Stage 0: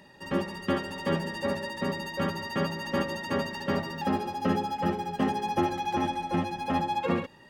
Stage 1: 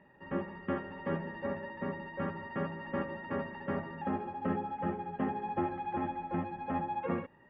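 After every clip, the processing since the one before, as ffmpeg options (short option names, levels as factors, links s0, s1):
-af "lowpass=f=2200:w=0.5412,lowpass=f=2200:w=1.3066,volume=0.473"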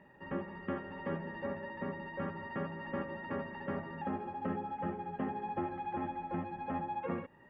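-af "acompressor=threshold=0.00708:ratio=1.5,volume=1.19"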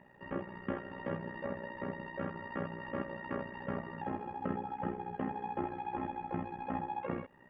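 -af "tremolo=f=61:d=0.75,volume=1.41"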